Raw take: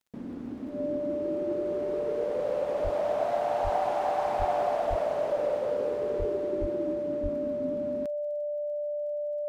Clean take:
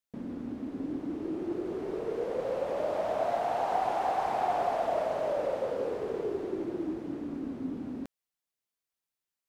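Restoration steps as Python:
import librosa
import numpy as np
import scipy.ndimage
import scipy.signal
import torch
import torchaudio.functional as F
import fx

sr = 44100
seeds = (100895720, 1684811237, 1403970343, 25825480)

y = fx.fix_declick_ar(x, sr, threshold=6.5)
y = fx.notch(y, sr, hz=590.0, q=30.0)
y = fx.fix_deplosive(y, sr, at_s=(2.83, 3.63, 4.38, 4.89, 6.18, 6.6, 7.22))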